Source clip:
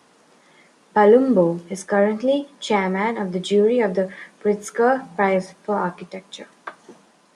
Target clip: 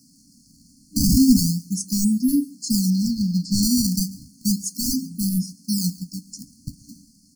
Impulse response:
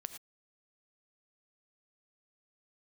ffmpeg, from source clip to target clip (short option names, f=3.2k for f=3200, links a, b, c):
-filter_complex "[0:a]acrossover=split=1600[a][b];[a]acrusher=samples=19:mix=1:aa=0.000001:lfo=1:lforange=30.4:lforate=0.33[c];[c][b]amix=inputs=2:normalize=0,asettb=1/sr,asplit=3[d][e][f];[d]atrim=end=2.904[g];[e]atrim=start=2.9:end=3.63,asetpts=PTS-STARTPTS,afade=t=in:d=0.004:c=qsin,afade=t=out:st=0.726:d=0.004:c=qsin,highshelf=f=5.6k:t=q:w=1.5:g=-12[h];[f]atrim=start=3.626[i];[g][h]acrossfade=d=0.004:c1=hsin:c2=qsin[j];[j][i]acrossfade=d=0.004:c1=qsin:c2=hsin,aecho=1:1:137:0.0708,aeval=exprs='0.237*(abs(mod(val(0)/0.237+3,4)-2)-1)':c=same,afftfilt=real='re*(1-between(b*sr/4096,300,4200))':imag='im*(1-between(b*sr/4096,300,4200))':win_size=4096:overlap=0.75,volume=6dB"